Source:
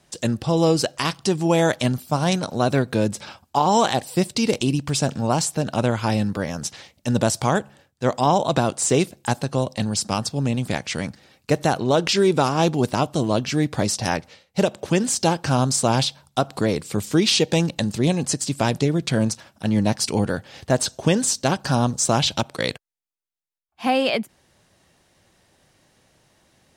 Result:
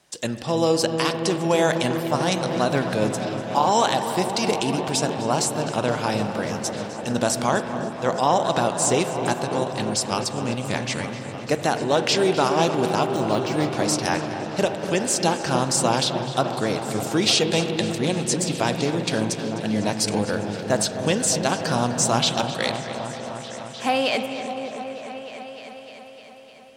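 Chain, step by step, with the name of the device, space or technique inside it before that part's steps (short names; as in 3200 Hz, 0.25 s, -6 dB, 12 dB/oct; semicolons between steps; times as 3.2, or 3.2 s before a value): dub delay into a spring reverb (darkening echo 0.254 s, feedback 67%, low-pass 4500 Hz, level -12.5 dB; spring tank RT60 2.9 s, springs 33/37 ms, chirp 70 ms, DRR 9 dB); 13.03–13.67 de-esser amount 75%; low shelf 230 Hz -11 dB; repeats that get brighter 0.303 s, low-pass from 400 Hz, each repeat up 1 oct, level -6 dB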